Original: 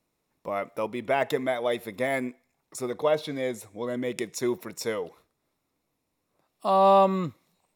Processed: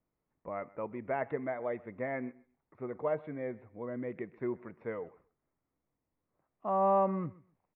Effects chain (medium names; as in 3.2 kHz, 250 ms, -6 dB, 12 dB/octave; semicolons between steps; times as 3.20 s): steep low-pass 2.1 kHz 36 dB/octave; bass shelf 130 Hz +7.5 dB; on a send: feedback delay 130 ms, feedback 18%, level -21.5 dB; on the sum: trim -9 dB